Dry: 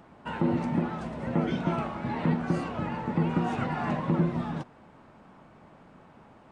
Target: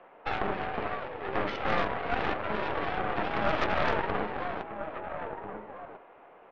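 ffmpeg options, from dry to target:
ffmpeg -i in.wav -filter_complex "[0:a]highpass=frequency=520:width_type=q:width=0.5412,highpass=frequency=520:width_type=q:width=1.307,lowpass=frequency=3100:width_type=q:width=0.5176,lowpass=frequency=3100:width_type=q:width=0.7071,lowpass=frequency=3100:width_type=q:width=1.932,afreqshift=-140,asplit=2[link_01][link_02];[link_02]adelay=1341,volume=-6dB,highshelf=frequency=4000:gain=-30.2[link_03];[link_01][link_03]amix=inputs=2:normalize=0,aeval=exprs='0.0841*(cos(1*acos(clip(val(0)/0.0841,-1,1)))-cos(1*PI/2))+0.0376*(cos(4*acos(clip(val(0)/0.0841,-1,1)))-cos(4*PI/2))':channel_layout=same,volume=3dB" out.wav

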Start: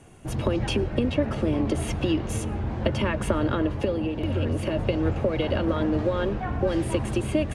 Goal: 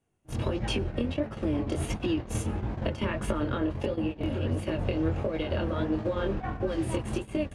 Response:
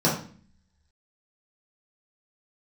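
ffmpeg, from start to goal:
-af "acompressor=threshold=-24dB:ratio=10,flanger=delay=18.5:depth=7.4:speed=1.5,agate=range=-26dB:threshold=-32dB:ratio=16:detection=peak,volume=2.5dB"

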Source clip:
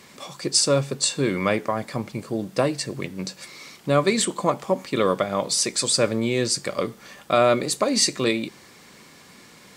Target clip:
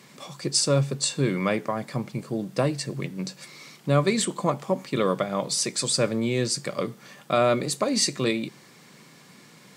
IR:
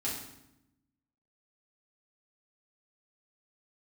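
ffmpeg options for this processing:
-af "lowshelf=frequency=100:width_type=q:width=3:gain=-10,volume=-3.5dB"

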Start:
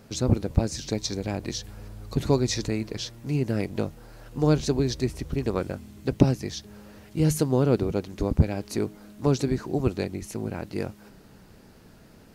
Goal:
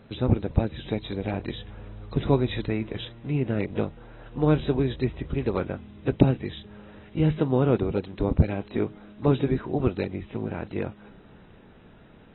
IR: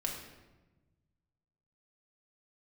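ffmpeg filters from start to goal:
-ar 24000 -c:a aac -b:a 16k

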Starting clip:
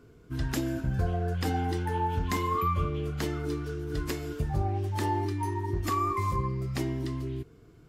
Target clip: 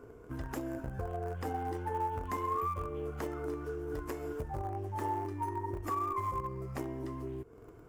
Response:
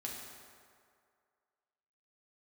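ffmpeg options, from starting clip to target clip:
-filter_complex "[0:a]equalizer=frequency=160:width_type=o:width=0.48:gain=-7.5,asplit=2[link_01][link_02];[link_02]acrusher=bits=5:dc=4:mix=0:aa=0.000001,volume=-11dB[link_03];[link_01][link_03]amix=inputs=2:normalize=0,acompressor=threshold=-43dB:ratio=2.5,equalizer=frequency=500:width_type=o:width=1:gain=7,equalizer=frequency=1000:width_type=o:width=1:gain=7,equalizer=frequency=4000:width_type=o:width=1:gain=-11"

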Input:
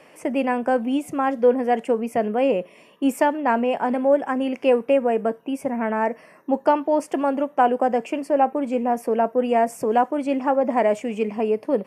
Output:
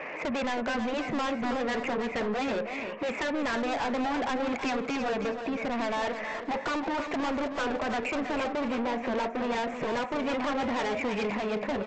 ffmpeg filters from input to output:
ffmpeg -i in.wav -filter_complex "[0:a]highshelf=frequency=3100:width_type=q:width=3:gain=-10.5,afftfilt=real='re*lt(hypot(re,im),0.891)':imag='im*lt(hypot(re,im),0.891)':win_size=1024:overlap=0.75,acompressor=threshold=-29dB:ratio=3,asplit=2[link_01][link_02];[link_02]highpass=frequency=720:poles=1,volume=12dB,asoftclip=type=tanh:threshold=-17.5dB[link_03];[link_01][link_03]amix=inputs=2:normalize=0,lowpass=frequency=1500:poles=1,volume=-6dB,aresample=16000,asoftclip=type=tanh:threshold=-36dB,aresample=44100,aecho=1:1:321|642|963|1284:0.398|0.119|0.0358|0.0107,volume=8dB" out.wav

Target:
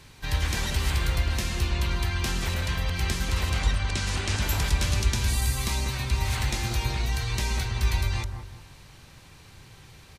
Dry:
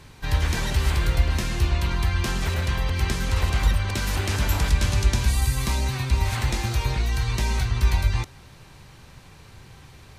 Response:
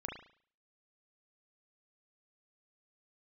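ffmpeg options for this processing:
-filter_complex "[0:a]asettb=1/sr,asplit=3[link_01][link_02][link_03];[link_01]atrim=end=3.594[link_04];[link_02]atrim=start=3.59:end=4.42,asetpts=PTS-STARTPTS,afade=type=in:duration=0.004:curve=qsin,afade=type=out:start_time=0.826:duration=0.004:curve=qsin,lowpass=frequency=9100:width=0.5412,lowpass=frequency=9100:width=1.3066[link_05];[link_03]atrim=start=4.416[link_06];[link_04][link_05]acrossfade=duration=0.004:curve1=hsin:curve2=qsin[link_07];[link_07][link_06]acrossfade=duration=0.004:curve1=qsin:curve2=hsin,acrossover=split=1900[link_08][link_09];[link_08]aecho=1:1:186|372|558|744:0.501|0.17|0.0579|0.0197[link_10];[link_09]acontrast=22[link_11];[link_10][link_11]amix=inputs=2:normalize=0,volume=-4.5dB"

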